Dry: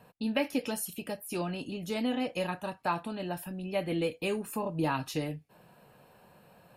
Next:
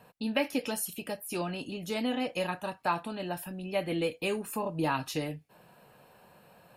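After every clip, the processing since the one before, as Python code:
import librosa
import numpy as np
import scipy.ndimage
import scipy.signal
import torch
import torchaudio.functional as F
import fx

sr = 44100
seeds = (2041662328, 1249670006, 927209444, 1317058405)

y = fx.low_shelf(x, sr, hz=380.0, db=-4.0)
y = y * librosa.db_to_amplitude(2.0)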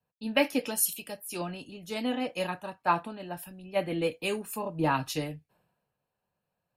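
y = fx.band_widen(x, sr, depth_pct=100)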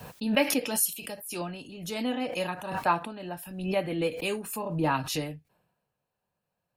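y = fx.pre_swell(x, sr, db_per_s=66.0)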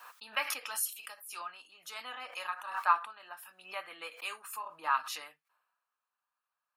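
y = fx.highpass_res(x, sr, hz=1200.0, q=4.5)
y = y * librosa.db_to_amplitude(-7.5)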